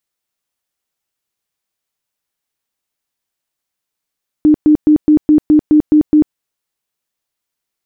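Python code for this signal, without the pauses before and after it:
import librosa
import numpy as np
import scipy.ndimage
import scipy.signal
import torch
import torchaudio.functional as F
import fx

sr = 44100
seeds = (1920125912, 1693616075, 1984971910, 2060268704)

y = fx.tone_burst(sr, hz=303.0, cycles=28, every_s=0.21, bursts=9, level_db=-4.5)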